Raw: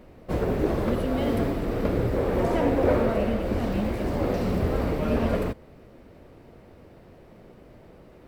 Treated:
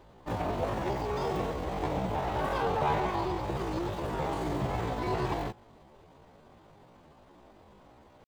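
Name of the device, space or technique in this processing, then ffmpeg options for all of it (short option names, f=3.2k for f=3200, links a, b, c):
chipmunk voice: -filter_complex "[0:a]asplit=3[a][b][c];[a]afade=t=out:st=2.21:d=0.02[d];[b]bandreject=f=60:t=h:w=6,bandreject=f=120:t=h:w=6,bandreject=f=180:t=h:w=6,bandreject=f=240:t=h:w=6,bandreject=f=300:t=h:w=6,bandreject=f=360:t=h:w=6,afade=t=in:st=2.21:d=0.02,afade=t=out:st=2.68:d=0.02[e];[c]afade=t=in:st=2.68:d=0.02[f];[d][e][f]amix=inputs=3:normalize=0,asetrate=72056,aresample=44100,atempo=0.612027,volume=-6.5dB"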